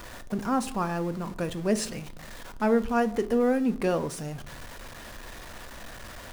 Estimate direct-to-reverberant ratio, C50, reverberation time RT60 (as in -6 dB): 10.5 dB, 18.5 dB, 0.60 s